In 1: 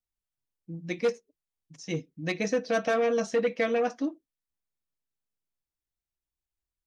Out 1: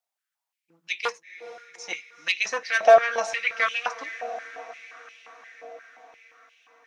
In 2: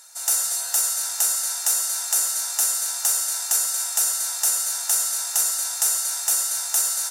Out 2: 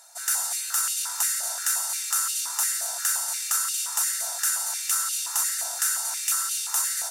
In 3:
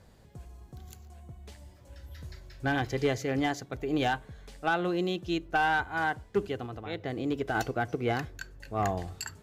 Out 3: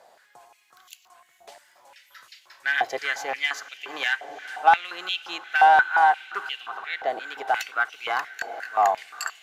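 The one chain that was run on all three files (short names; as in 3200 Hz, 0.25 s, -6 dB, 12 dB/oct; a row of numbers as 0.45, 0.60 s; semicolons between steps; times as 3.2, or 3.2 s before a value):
diffused feedback echo 0.452 s, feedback 69%, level -16 dB; stepped high-pass 5.7 Hz 690–2800 Hz; match loudness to -24 LUFS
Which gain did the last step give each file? +4.5, -4.5, +4.0 dB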